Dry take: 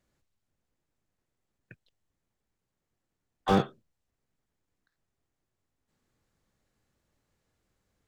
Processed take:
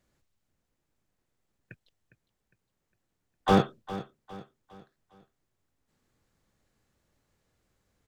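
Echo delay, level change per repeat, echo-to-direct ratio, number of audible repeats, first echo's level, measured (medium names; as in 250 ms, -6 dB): 407 ms, -7.5 dB, -14.0 dB, 3, -15.0 dB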